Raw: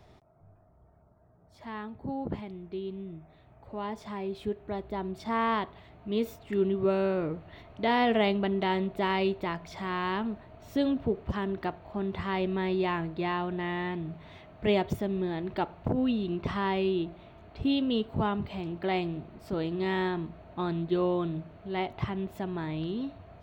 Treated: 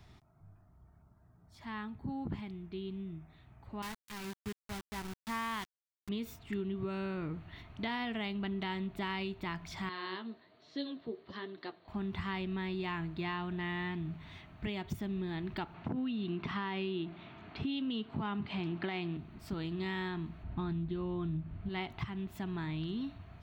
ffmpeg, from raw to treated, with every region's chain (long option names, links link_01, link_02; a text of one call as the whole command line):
ffmpeg -i in.wav -filter_complex "[0:a]asettb=1/sr,asplit=3[link_01][link_02][link_03];[link_01]atrim=end=3.824[link_04];[link_02]atrim=start=3.82:end=6.09,asetpts=PTS-STARTPTS,afade=type=in:duration=0.004:curve=qsin,afade=type=out:start_time=2.266:duration=0.004:curve=qsin,agate=range=-33dB:threshold=-39dB:ratio=3:release=100:detection=peak,equalizer=frequency=330:width=0.3:gain=-4.5,aeval=exprs='val(0)*gte(abs(val(0)),0.0126)':channel_layout=same[link_05];[link_03]atrim=start=6.086[link_06];[link_04][link_05]acrossfade=duration=0.004:curve1=hsin:curve2=qsin[link_07];[link_07][link_06]acrossfade=duration=0.004:curve1=qsin:curve2=hsin,asettb=1/sr,asplit=3[link_08][link_09][link_10];[link_08]atrim=end=9.894[link_11];[link_09]atrim=start=9.89:end=11.88,asetpts=PTS-STARTPTS,afade=type=in:duration=0.004:curve=qsin,afade=type=out:start_time=1.986:duration=0.004:curve=qsin,highpass=350,equalizer=frequency=360:width_type=q:width=4:gain=4,equalizer=frequency=520:width_type=q:width=4:gain=7,equalizer=frequency=870:width_type=q:width=4:gain=-7,equalizer=frequency=1400:width_type=q:width=4:gain=-6,equalizer=frequency=2500:width_type=q:width=4:gain=-7,equalizer=frequency=4200:width_type=q:width=4:gain=9,lowpass=frequency=4700:width=0.5412,lowpass=frequency=4700:width=1.3066,flanger=delay=6.4:depth=6.9:regen=43:speed=1.2:shape=sinusoidal[link_12];[link_10]atrim=start=11.876[link_13];[link_11][link_12]acrossfade=duration=0.004:curve1=hsin:curve2=qsin[link_14];[link_14][link_13]acrossfade=duration=0.004:curve1=qsin:curve2=hsin,asettb=1/sr,asplit=3[link_15][link_16][link_17];[link_15]atrim=end=15.744[link_18];[link_16]atrim=start=15.74:end=19.17,asetpts=PTS-STARTPTS,afade=type=in:duration=0.004:curve=qsin,afade=type=out:start_time=3.426:duration=0.004:curve=qsin,highpass=170,lowpass=4100,acontrast=87[link_19];[link_17]atrim=start=19.166[link_20];[link_18][link_19]acrossfade=duration=0.004:curve1=hsin:curve2=qsin[link_21];[link_21][link_20]acrossfade=duration=0.004:curve1=qsin:curve2=hsin,asettb=1/sr,asplit=3[link_22][link_23][link_24];[link_22]atrim=end=20.434[link_25];[link_23]atrim=start=20.43:end=21.69,asetpts=PTS-STARTPTS,afade=type=in:duration=0.004:curve=qsin,afade=type=out:start_time=1.256:duration=0.004:curve=qsin,aemphasis=mode=reproduction:type=bsi,asplit=2[link_26][link_27];[link_27]adelay=20,volume=-13dB[link_28];[link_26][link_28]amix=inputs=2:normalize=0,atrim=end_sample=55566[link_29];[link_24]atrim=start=21.686[link_30];[link_25][link_29]acrossfade=duration=0.004:curve1=hsin:curve2=qsin[link_31];[link_31][link_30]acrossfade=duration=0.004:curve1=qsin:curve2=hsin,equalizer=frequency=540:width_type=o:width=1.1:gain=-15,alimiter=level_in=0.5dB:limit=-24dB:level=0:latency=1:release=485,volume=-0.5dB,acompressor=threshold=-34dB:ratio=6,volume=1dB" out.wav